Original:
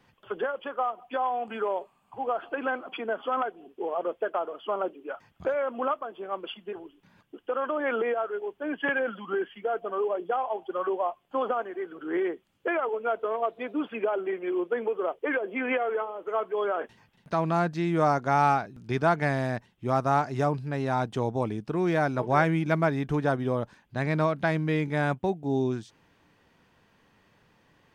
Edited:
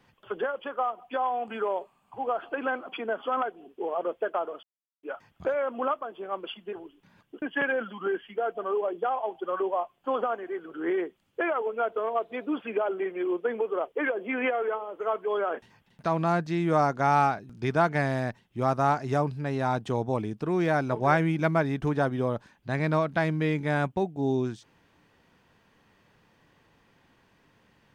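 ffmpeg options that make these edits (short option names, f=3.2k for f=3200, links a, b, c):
-filter_complex "[0:a]asplit=4[a][b][c][d];[a]atrim=end=4.63,asetpts=PTS-STARTPTS,afade=t=out:st=4.626:d=0.004:c=hsin[e];[b]atrim=start=4.63:end=5.03,asetpts=PTS-STARTPTS,volume=0[f];[c]atrim=start=5.03:end=7.422,asetpts=PTS-STARTPTS,afade=t=in:d=0.004:c=hsin[g];[d]atrim=start=8.688[h];[e][f][g]concat=n=3:v=0:a=1[i];[i][h]acrossfade=d=0.004:c1=hsin:c2=hsin"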